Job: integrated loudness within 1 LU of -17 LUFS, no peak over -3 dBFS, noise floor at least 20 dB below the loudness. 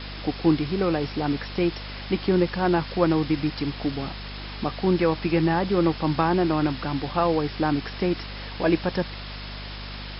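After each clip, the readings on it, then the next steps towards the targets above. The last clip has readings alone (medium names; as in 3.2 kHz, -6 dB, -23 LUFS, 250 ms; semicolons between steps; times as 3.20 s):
hum 50 Hz; highest harmonic 250 Hz; hum level -36 dBFS; noise floor -36 dBFS; noise floor target -45 dBFS; loudness -24.5 LUFS; peak level -6.5 dBFS; loudness target -17.0 LUFS
-> hum notches 50/100/150/200/250 Hz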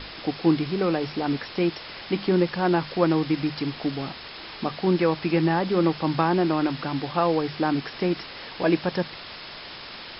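hum not found; noise floor -40 dBFS; noise floor target -45 dBFS
-> noise reduction 6 dB, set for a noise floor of -40 dBFS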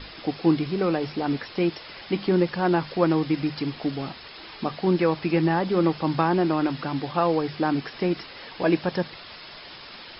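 noise floor -43 dBFS; noise floor target -45 dBFS
-> noise reduction 6 dB, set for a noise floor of -43 dBFS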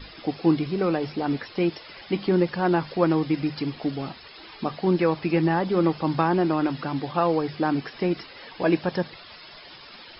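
noise floor -46 dBFS; loudness -25.0 LUFS; peak level -6.5 dBFS; loudness target -17.0 LUFS
-> trim +8 dB; peak limiter -3 dBFS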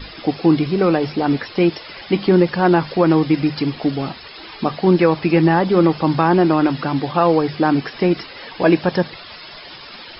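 loudness -17.5 LUFS; peak level -3.0 dBFS; noise floor -38 dBFS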